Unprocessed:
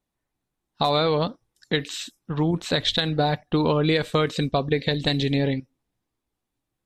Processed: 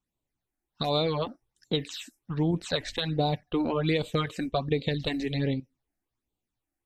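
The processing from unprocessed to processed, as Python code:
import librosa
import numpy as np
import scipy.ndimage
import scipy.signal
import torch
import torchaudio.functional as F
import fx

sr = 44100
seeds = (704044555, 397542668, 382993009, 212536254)

y = fx.phaser_stages(x, sr, stages=8, low_hz=130.0, high_hz=1800.0, hz=1.3, feedback_pct=0)
y = y * librosa.db_to_amplitude(-3.0)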